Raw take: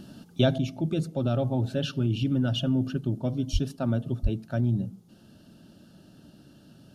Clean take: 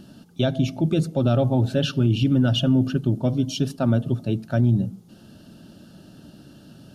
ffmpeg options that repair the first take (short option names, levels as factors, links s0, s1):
-filter_complex "[0:a]asplit=3[s0][s1][s2];[s0]afade=t=out:st=3.52:d=0.02[s3];[s1]highpass=f=140:w=0.5412,highpass=f=140:w=1.3066,afade=t=in:st=3.52:d=0.02,afade=t=out:st=3.64:d=0.02[s4];[s2]afade=t=in:st=3.64:d=0.02[s5];[s3][s4][s5]amix=inputs=3:normalize=0,asplit=3[s6][s7][s8];[s6]afade=t=out:st=4.22:d=0.02[s9];[s7]highpass=f=140:w=0.5412,highpass=f=140:w=1.3066,afade=t=in:st=4.22:d=0.02,afade=t=out:st=4.34:d=0.02[s10];[s8]afade=t=in:st=4.34:d=0.02[s11];[s9][s10][s11]amix=inputs=3:normalize=0,asetnsamples=n=441:p=0,asendcmd='0.58 volume volume 6.5dB',volume=1"